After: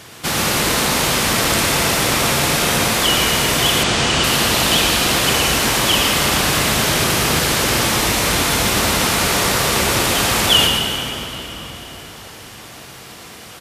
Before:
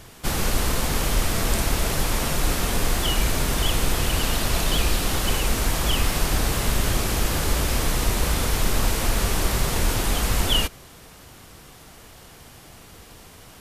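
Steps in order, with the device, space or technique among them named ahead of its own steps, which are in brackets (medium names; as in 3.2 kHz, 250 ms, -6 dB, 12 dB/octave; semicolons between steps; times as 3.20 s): PA in a hall (high-pass 120 Hz 12 dB/octave; peaking EQ 3 kHz +5 dB 3 oct; delay 114 ms -6 dB; reverberation RT60 4.2 s, pre-delay 63 ms, DRR 3 dB); 3.83–4.24 s: low-pass 8.1 kHz 24 dB/octave; trim +4.5 dB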